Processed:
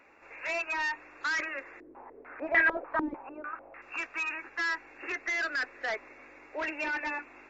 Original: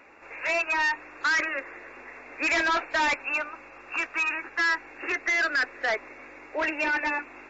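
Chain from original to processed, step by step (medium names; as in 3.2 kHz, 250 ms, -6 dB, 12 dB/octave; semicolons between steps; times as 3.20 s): 1.80–3.82 s: step-sequenced low-pass 6.7 Hz 320–1900 Hz; trim -6.5 dB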